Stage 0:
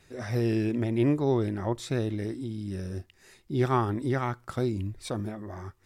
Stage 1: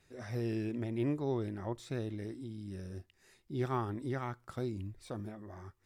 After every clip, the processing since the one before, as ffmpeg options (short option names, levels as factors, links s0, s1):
-af "deesser=1,volume=0.355"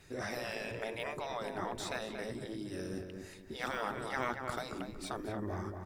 -filter_complex "[0:a]afftfilt=real='re*lt(hypot(re,im),0.0398)':imag='im*lt(hypot(re,im),0.0398)':win_size=1024:overlap=0.75,asplit=2[s0][s1];[s1]adelay=233,lowpass=f=1900:p=1,volume=0.562,asplit=2[s2][s3];[s3]adelay=233,lowpass=f=1900:p=1,volume=0.33,asplit=2[s4][s5];[s5]adelay=233,lowpass=f=1900:p=1,volume=0.33,asplit=2[s6][s7];[s7]adelay=233,lowpass=f=1900:p=1,volume=0.33[s8];[s2][s4][s6][s8]amix=inputs=4:normalize=0[s9];[s0][s9]amix=inputs=2:normalize=0,volume=2.99"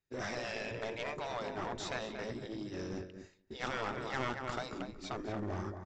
-af "agate=range=0.0224:threshold=0.0112:ratio=3:detection=peak,aresample=16000,aeval=exprs='clip(val(0),-1,0.0112)':c=same,aresample=44100,volume=1.19"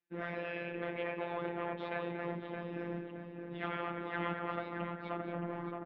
-filter_complex "[0:a]highpass=f=190:t=q:w=0.5412,highpass=f=190:t=q:w=1.307,lowpass=f=3100:t=q:w=0.5176,lowpass=f=3100:t=q:w=0.7071,lowpass=f=3100:t=q:w=1.932,afreqshift=-56,asplit=2[s0][s1];[s1]adelay=620,lowpass=f=1600:p=1,volume=0.668,asplit=2[s2][s3];[s3]adelay=620,lowpass=f=1600:p=1,volume=0.42,asplit=2[s4][s5];[s5]adelay=620,lowpass=f=1600:p=1,volume=0.42,asplit=2[s6][s7];[s7]adelay=620,lowpass=f=1600:p=1,volume=0.42,asplit=2[s8][s9];[s9]adelay=620,lowpass=f=1600:p=1,volume=0.42[s10];[s0][s2][s4][s6][s8][s10]amix=inputs=6:normalize=0,afftfilt=real='hypot(re,im)*cos(PI*b)':imag='0':win_size=1024:overlap=0.75,volume=1.41"